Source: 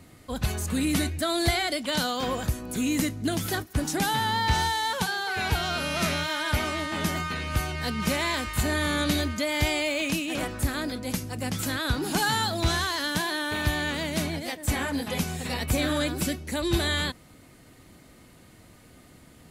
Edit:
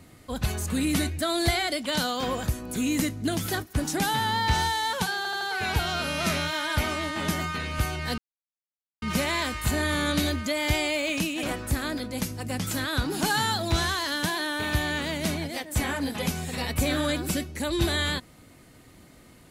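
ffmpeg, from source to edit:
ffmpeg -i in.wav -filter_complex "[0:a]asplit=5[link_01][link_02][link_03][link_04][link_05];[link_01]atrim=end=5.252[link_06];[link_02]atrim=start=5.168:end=5.252[link_07];[link_03]atrim=start=5.168:end=5.252[link_08];[link_04]atrim=start=5.168:end=7.94,asetpts=PTS-STARTPTS,afade=type=out:start_time=2.768:duration=0.004:curve=hsin,apad=pad_dur=0.84[link_09];[link_05]atrim=start=7.94,asetpts=PTS-STARTPTS,afade=type=in:duration=0.004:curve=hsin[link_10];[link_06][link_07]acrossfade=duration=0.004:curve1=hsin:curve2=hsin[link_11];[link_11][link_08]acrossfade=duration=0.004:curve1=hsin:curve2=hsin[link_12];[link_09][link_10]concat=n=2:v=0:a=1[link_13];[link_12][link_13]acrossfade=duration=0.004:curve1=hsin:curve2=hsin" out.wav

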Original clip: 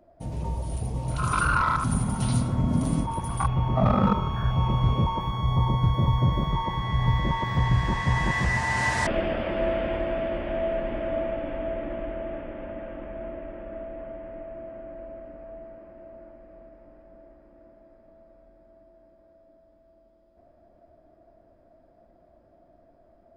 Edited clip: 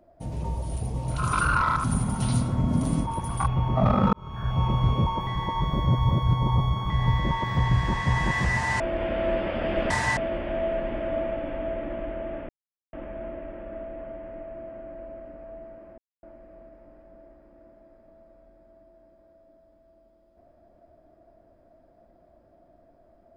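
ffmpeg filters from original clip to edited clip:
ffmpeg -i in.wav -filter_complex "[0:a]asplit=10[link_01][link_02][link_03][link_04][link_05][link_06][link_07][link_08][link_09][link_10];[link_01]atrim=end=4.13,asetpts=PTS-STARTPTS,afade=type=out:start_time=4.126:duration=0.004:curve=hsin[link_11];[link_02]atrim=start=4.13:end=5.272,asetpts=PTS-STARTPTS,afade=type=in:duration=0.48[link_12];[link_03]atrim=start=5.268:end=6.902,asetpts=PTS-STARTPTS,areverse[link_13];[link_04]atrim=start=6.898:end=8.802[link_14];[link_05]atrim=start=8.798:end=10.172,asetpts=PTS-STARTPTS,areverse[link_15];[link_06]atrim=start=10.168:end=12.49,asetpts=PTS-STARTPTS,afade=type=out:start_time=2.318:duration=0.004:curve=hsin[link_16];[link_07]atrim=start=12.49:end=12.93,asetpts=PTS-STARTPTS,volume=0[link_17];[link_08]atrim=start=12.93:end=15.98,asetpts=PTS-STARTPTS,afade=type=in:duration=0.004:curve=hsin,afade=type=out:start_time=3.046:duration=0.004:curve=hsin[link_18];[link_09]atrim=start=15.98:end=16.23,asetpts=PTS-STARTPTS,volume=0[link_19];[link_10]atrim=start=16.23,asetpts=PTS-STARTPTS,afade=type=in:duration=0.004:curve=hsin[link_20];[link_11][link_12]concat=n=2:v=0:a=1[link_21];[link_21][link_13]acrossfade=duration=0.004:curve1=hsin:curve2=hsin[link_22];[link_22][link_14]acrossfade=duration=0.004:curve1=hsin:curve2=hsin[link_23];[link_23][link_15]acrossfade=duration=0.004:curve1=hsin:curve2=hsin[link_24];[link_16][link_17][link_18][link_19][link_20]concat=n=5:v=0:a=1[link_25];[link_24][link_25]acrossfade=duration=0.004:curve1=hsin:curve2=hsin" out.wav

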